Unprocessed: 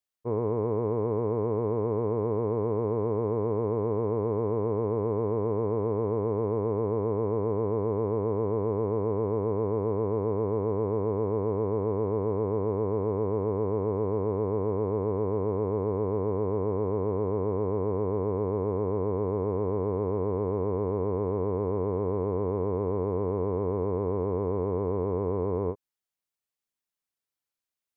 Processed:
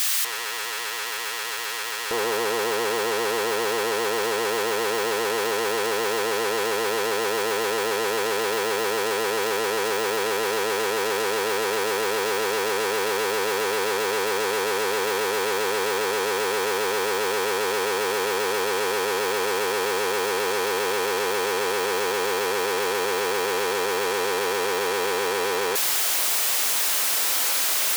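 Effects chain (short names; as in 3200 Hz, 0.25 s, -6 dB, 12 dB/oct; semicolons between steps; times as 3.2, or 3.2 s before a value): infinite clipping; HPF 1400 Hz 12 dB/oct, from 2.11 s 460 Hz; gain +7.5 dB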